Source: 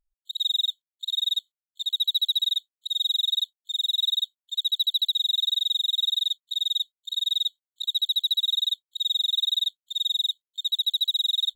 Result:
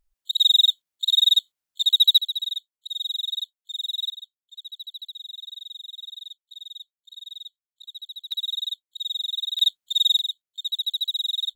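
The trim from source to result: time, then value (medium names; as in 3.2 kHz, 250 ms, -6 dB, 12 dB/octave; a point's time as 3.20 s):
+8 dB
from 2.18 s -4 dB
from 4.10 s -14 dB
from 8.32 s -4 dB
from 9.59 s +6.5 dB
from 10.19 s -2 dB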